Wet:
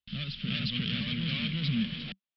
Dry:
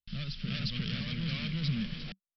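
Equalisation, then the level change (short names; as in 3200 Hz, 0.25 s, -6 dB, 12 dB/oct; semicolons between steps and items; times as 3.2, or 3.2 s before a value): HPF 42 Hz; synth low-pass 3300 Hz, resonance Q 2.2; bell 240 Hz +6.5 dB 0.48 oct; 0.0 dB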